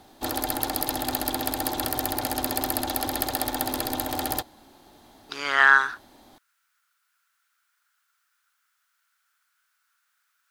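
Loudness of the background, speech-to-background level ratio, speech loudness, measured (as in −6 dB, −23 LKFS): −27.5 LKFS, 9.0 dB, −18.5 LKFS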